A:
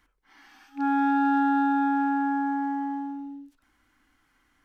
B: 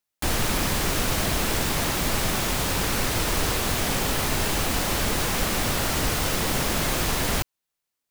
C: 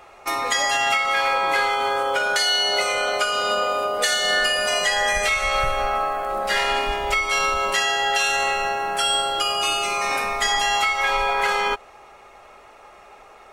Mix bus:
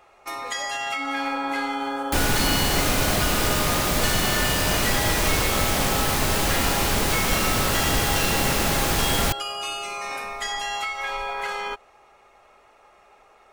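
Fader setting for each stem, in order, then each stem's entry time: -8.5 dB, +2.0 dB, -8.0 dB; 0.20 s, 1.90 s, 0.00 s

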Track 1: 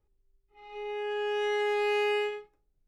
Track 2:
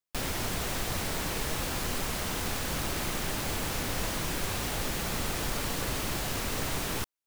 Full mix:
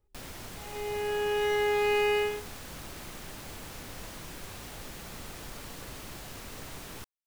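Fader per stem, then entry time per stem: +1.5 dB, -11.0 dB; 0.00 s, 0.00 s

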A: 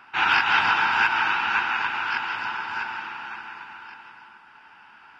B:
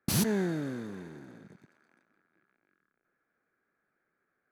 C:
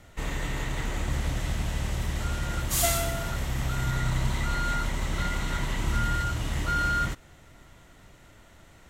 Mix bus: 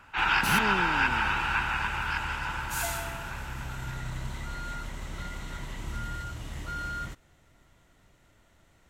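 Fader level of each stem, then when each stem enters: -5.0 dB, -3.5 dB, -9.0 dB; 0.00 s, 0.35 s, 0.00 s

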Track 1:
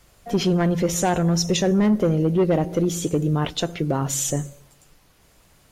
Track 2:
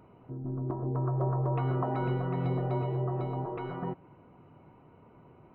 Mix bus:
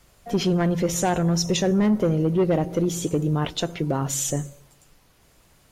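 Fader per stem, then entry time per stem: -1.5 dB, -17.0 dB; 0.00 s, 0.00 s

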